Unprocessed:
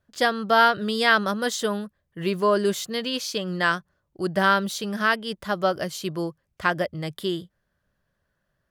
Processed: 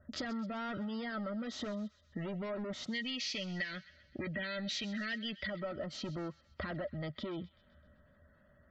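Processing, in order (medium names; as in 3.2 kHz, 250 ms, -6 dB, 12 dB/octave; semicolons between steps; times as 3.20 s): peak limiter -16.5 dBFS, peak gain reduction 11 dB; hard clipper -32.5 dBFS, distortion -5 dB; low-pass 5.5 kHz 24 dB/octave; peaking EQ 75 Hz +14 dB 0.44 oct; small resonant body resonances 240/590/1300/1900 Hz, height 12 dB, ringing for 45 ms; spectral gate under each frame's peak -30 dB strong; 2.91–5.50 s: resonant high shelf 1.6 kHz +10.5 dB, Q 3; compression 4:1, threshold -45 dBFS, peak gain reduction 22.5 dB; feedback echo behind a high-pass 129 ms, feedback 55%, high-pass 1.8 kHz, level -16 dB; trim +4.5 dB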